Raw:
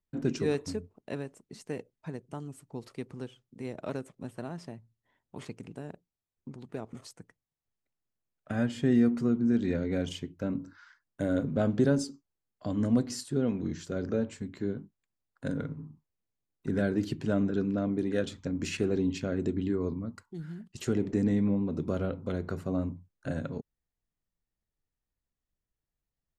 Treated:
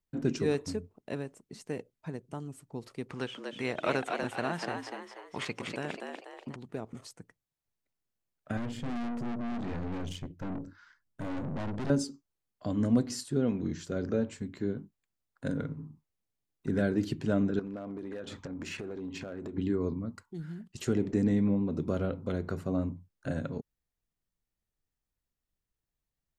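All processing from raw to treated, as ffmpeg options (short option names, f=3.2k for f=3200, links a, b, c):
-filter_complex "[0:a]asettb=1/sr,asplit=3[a][b][c];[a]atrim=end=3.094[d];[b]atrim=start=3.09:end=6.56,asetpts=PTS-STARTPTS,afade=t=in:d=0.004:c=qsin,afade=t=out:st=3.466:d=0.004:c=qsin,equalizer=f=2.2k:w=0.33:g=14.5,asplit=6[e][f][g][h][i][j];[f]adelay=242,afreqshift=97,volume=-4.5dB[k];[g]adelay=484,afreqshift=194,volume=-11.8dB[l];[h]adelay=726,afreqshift=291,volume=-19.2dB[m];[i]adelay=968,afreqshift=388,volume=-26.5dB[n];[j]adelay=1210,afreqshift=485,volume=-33.8dB[o];[e][k][l][m][n][o]amix=inputs=6:normalize=0,atrim=end_sample=153027[p];[c]atrim=start=6.556[q];[d][p]acrossfade=d=0.004:c1=hsin:c2=qsin[r];[r][q]acrossfade=d=0.004:c1=qsin:c2=hsin,asettb=1/sr,asplit=3[s][t][u];[s]atrim=end=8.574[v];[t]atrim=start=8.57:end=11.9,asetpts=PTS-STARTPTS,afade=t=in:d=0.004:c=qsin,afade=t=out:st=3.326:d=0.004:c=qsin,lowshelf=f=230:g=10,aeval=exprs='(tanh(50.1*val(0)+0.6)-tanh(0.6))/50.1':c=same[w];[u]atrim=start=11.896[x];[v][w]acrossfade=d=0.004:c1=hsin:c2=qsin[y];[y][x]acrossfade=d=0.004:c1=qsin:c2=hsin,asettb=1/sr,asplit=3[z][aa][ab];[z]atrim=end=17.594[ac];[aa]atrim=start=17.59:end=19.58,asetpts=PTS-STARTPTS,afade=t=in:d=0.004:c=qsin,afade=t=out:st=1.986:d=0.004:c=qsin,equalizer=f=910:t=o:w=2.6:g=11.5,acompressor=threshold=-35dB:ratio=12:attack=3.2:release=140:knee=1:detection=peak,volume=32.5dB,asoftclip=hard,volume=-32.5dB[ad];[ab]atrim=start=19.576[ae];[ac][ad]acrossfade=d=0.004:c1=hsin:c2=qsin[af];[af][ae]acrossfade=d=0.004:c1=qsin:c2=hsin"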